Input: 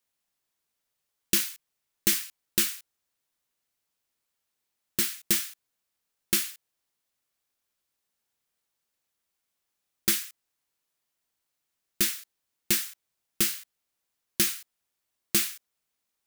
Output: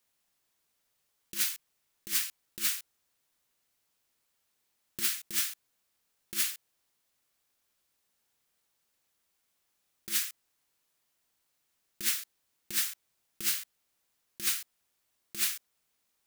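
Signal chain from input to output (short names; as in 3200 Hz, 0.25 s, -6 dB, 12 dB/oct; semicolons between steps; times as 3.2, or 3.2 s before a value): negative-ratio compressor -29 dBFS, ratio -0.5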